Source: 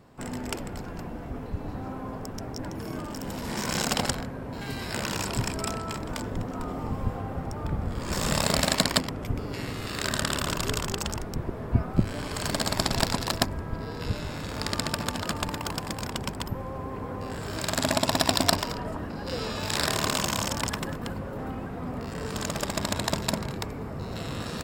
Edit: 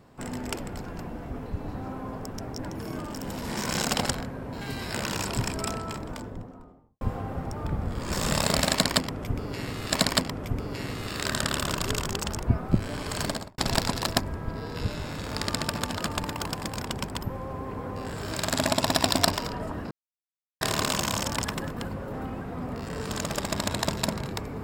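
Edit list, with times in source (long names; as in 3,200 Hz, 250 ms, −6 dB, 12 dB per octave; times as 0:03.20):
0:05.66–0:07.01: fade out and dull
0:08.71–0:09.92: repeat, 2 plays
0:11.22–0:11.68: remove
0:12.48–0:12.83: fade out and dull
0:19.16–0:19.86: silence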